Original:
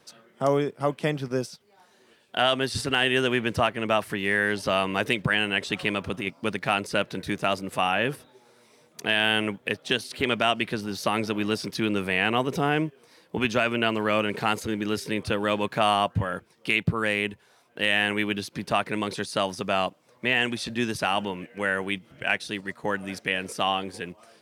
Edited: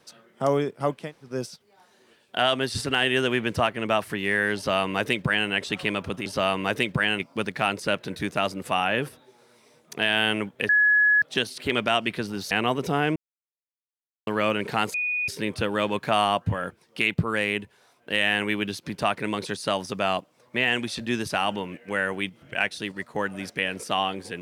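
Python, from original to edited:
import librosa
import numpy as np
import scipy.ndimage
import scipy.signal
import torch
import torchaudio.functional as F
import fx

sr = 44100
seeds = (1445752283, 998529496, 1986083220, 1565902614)

y = fx.edit(x, sr, fx.room_tone_fill(start_s=1.02, length_s=0.3, crossfade_s=0.24),
    fx.duplicate(start_s=4.56, length_s=0.93, to_s=6.26),
    fx.insert_tone(at_s=9.76, length_s=0.53, hz=1690.0, db=-15.5),
    fx.cut(start_s=11.05, length_s=1.15),
    fx.silence(start_s=12.85, length_s=1.11),
    fx.bleep(start_s=14.63, length_s=0.34, hz=2470.0, db=-23.5), tone=tone)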